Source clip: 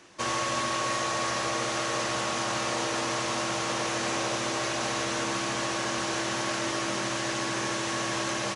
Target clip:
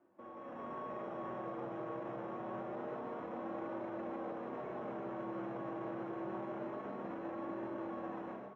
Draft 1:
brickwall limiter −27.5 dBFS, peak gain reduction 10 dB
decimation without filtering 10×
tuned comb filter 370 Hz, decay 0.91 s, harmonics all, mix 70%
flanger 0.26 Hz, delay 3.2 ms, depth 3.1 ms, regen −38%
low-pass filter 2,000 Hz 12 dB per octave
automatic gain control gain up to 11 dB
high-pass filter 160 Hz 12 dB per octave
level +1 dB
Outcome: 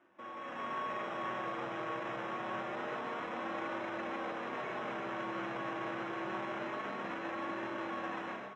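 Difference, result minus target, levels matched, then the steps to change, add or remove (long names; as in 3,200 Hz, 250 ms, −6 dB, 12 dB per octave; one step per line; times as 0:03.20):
2,000 Hz band +9.0 dB
change: low-pass filter 730 Hz 12 dB per octave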